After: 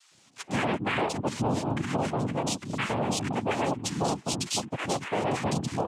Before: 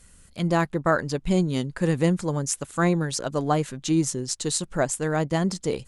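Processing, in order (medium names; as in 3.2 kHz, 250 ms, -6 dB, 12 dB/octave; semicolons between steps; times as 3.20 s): three bands offset in time highs, mids, lows 110/390 ms, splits 150/1000 Hz; noise-vocoded speech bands 4; peak limiter -18 dBFS, peak gain reduction 8.5 dB; 2.04–3.05 s: transformer saturation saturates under 330 Hz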